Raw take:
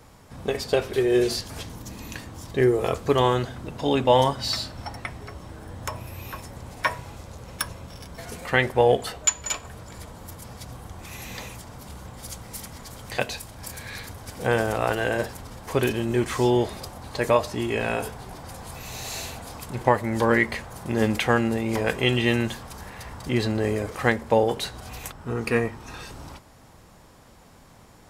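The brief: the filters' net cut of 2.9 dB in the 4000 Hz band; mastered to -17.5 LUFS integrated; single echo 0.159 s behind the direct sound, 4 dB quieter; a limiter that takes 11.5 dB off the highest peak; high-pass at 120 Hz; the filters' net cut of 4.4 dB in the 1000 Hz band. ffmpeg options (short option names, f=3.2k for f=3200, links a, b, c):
-af "highpass=120,equalizer=f=1k:t=o:g=-5.5,equalizer=f=4k:t=o:g=-3.5,alimiter=limit=-17dB:level=0:latency=1,aecho=1:1:159:0.631,volume=12.5dB"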